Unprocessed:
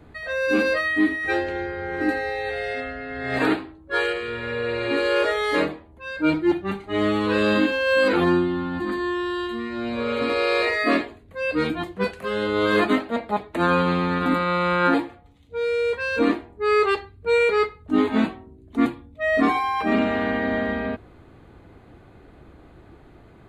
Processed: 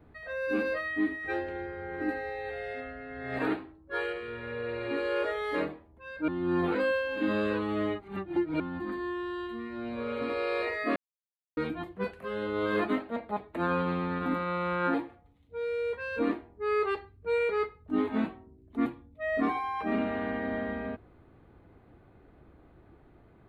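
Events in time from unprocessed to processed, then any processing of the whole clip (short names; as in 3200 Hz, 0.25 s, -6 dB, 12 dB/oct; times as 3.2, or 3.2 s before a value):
6.28–8.6 reverse
10.96–11.57 mute
whole clip: bell 6700 Hz -11.5 dB 1.8 oct; gain -8.5 dB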